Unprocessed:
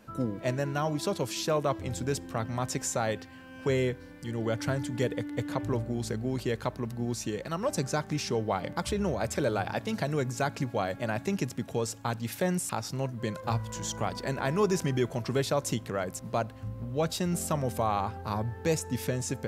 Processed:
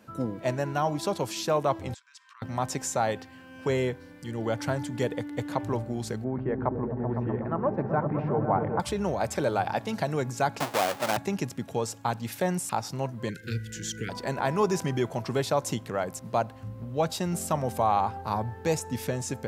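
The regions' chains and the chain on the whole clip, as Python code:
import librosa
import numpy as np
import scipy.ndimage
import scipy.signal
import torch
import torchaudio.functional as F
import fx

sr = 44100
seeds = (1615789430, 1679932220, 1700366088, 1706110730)

y = fx.chain(x, sr, fx.air_absorb(metres=91.0),
    fx.level_steps(step_db=22),
    fx.brickwall_highpass(low_hz=920.0), at=(1.94, 2.42))
y = fx.chain(y, sr, fx.lowpass(hz=1700.0, slope=24),
    fx.echo_opening(ms=127, hz=200, octaves=1, feedback_pct=70, wet_db=0), at=(6.24, 8.8))
y = fx.chain(y, sr, fx.halfwave_hold(),
    fx.highpass(hz=550.0, slope=6),
    fx.band_squash(depth_pct=40), at=(10.6, 11.17))
y = fx.chain(y, sr, fx.cheby1_bandstop(low_hz=460.0, high_hz=1500.0, order=5),
    fx.peak_eq(hz=1000.0, db=8.5, octaves=2.3), at=(13.29, 14.09))
y = scipy.signal.sosfilt(scipy.signal.butter(2, 77.0, 'highpass', fs=sr, output='sos'), y)
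y = fx.dynamic_eq(y, sr, hz=830.0, q=2.0, threshold_db=-46.0, ratio=4.0, max_db=7)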